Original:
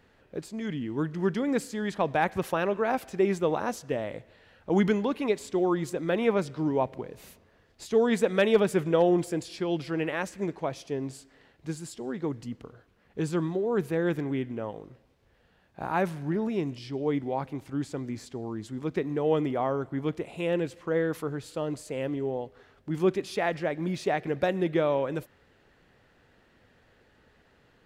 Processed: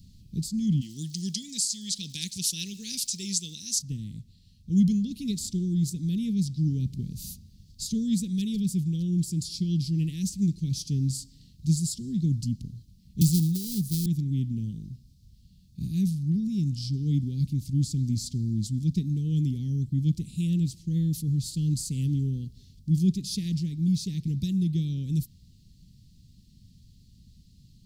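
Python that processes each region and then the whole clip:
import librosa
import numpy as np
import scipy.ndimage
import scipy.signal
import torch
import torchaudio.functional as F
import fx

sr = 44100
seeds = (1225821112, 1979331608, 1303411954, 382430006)

y = fx.weighting(x, sr, curve='ITU-R 468', at=(0.8, 3.78), fade=0.02)
y = fx.dmg_crackle(y, sr, seeds[0], per_s=230.0, level_db=-50.0, at=(0.8, 3.78), fade=0.02)
y = fx.chain(y, sr, fx.dead_time(dead_ms=0.19),
    fx.high_shelf(hz=8200.0, db=10.5),
    fx.band_squash(depth_pct=70), at=(13.21, 14.06))
y = scipy.signal.sosfilt(scipy.signal.ellip(3, 1.0, 60, [190.0, 4500.0], 'bandstop', fs=sr, output='sos'), y)
y = fx.rider(y, sr, range_db=5, speed_s=0.5)
y = fx.low_shelf(y, sr, hz=170.0, db=3.5)
y = y * 10.0 ** (8.5 / 20.0)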